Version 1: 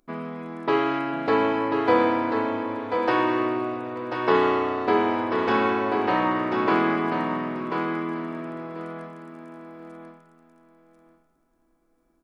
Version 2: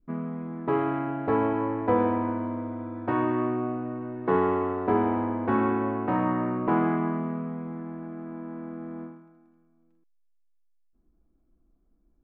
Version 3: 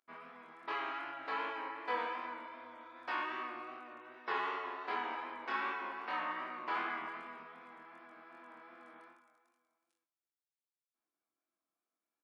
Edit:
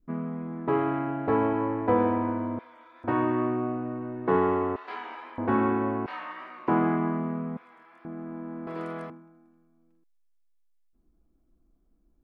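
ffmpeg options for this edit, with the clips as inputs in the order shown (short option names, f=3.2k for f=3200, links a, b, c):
-filter_complex "[2:a]asplit=4[a][b][c][d];[1:a]asplit=6[e][f][g][h][i][j];[e]atrim=end=2.592[k];[a]atrim=start=2.588:end=3.042[l];[f]atrim=start=3.038:end=4.762[m];[b]atrim=start=4.758:end=5.382[n];[g]atrim=start=5.378:end=6.062[o];[c]atrim=start=6.058:end=6.682[p];[h]atrim=start=6.678:end=7.572[q];[d]atrim=start=7.568:end=8.052[r];[i]atrim=start=8.048:end=8.672[s];[0:a]atrim=start=8.668:end=9.102[t];[j]atrim=start=9.098[u];[k][l]acrossfade=d=0.004:c1=hsin:c2=hsin[v];[v][m]acrossfade=d=0.004:c1=hsin:c2=hsin[w];[w][n]acrossfade=d=0.004:c1=hsin:c2=hsin[x];[x][o]acrossfade=d=0.004:c1=hsin:c2=hsin[y];[y][p]acrossfade=d=0.004:c1=hsin:c2=hsin[z];[z][q]acrossfade=d=0.004:c1=hsin:c2=hsin[aa];[aa][r]acrossfade=d=0.004:c1=hsin:c2=hsin[ab];[ab][s]acrossfade=d=0.004:c1=hsin:c2=hsin[ac];[ac][t]acrossfade=d=0.004:c1=hsin:c2=hsin[ad];[ad][u]acrossfade=d=0.004:c1=hsin:c2=hsin"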